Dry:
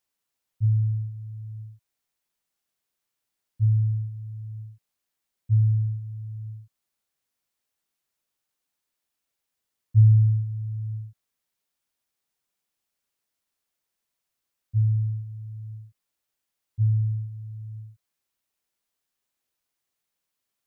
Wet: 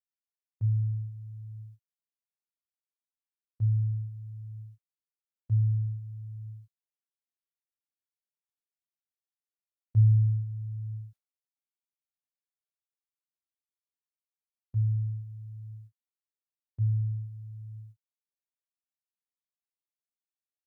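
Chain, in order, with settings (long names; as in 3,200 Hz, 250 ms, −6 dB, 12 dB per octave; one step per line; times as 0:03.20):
noise gate with hold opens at −32 dBFS
level −5 dB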